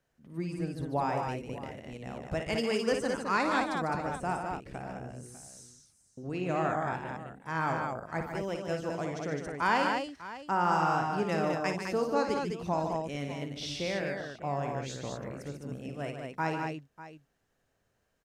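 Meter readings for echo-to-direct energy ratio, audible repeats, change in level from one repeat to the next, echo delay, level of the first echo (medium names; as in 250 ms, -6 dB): -1.5 dB, 4, no regular repeats, 56 ms, -7.5 dB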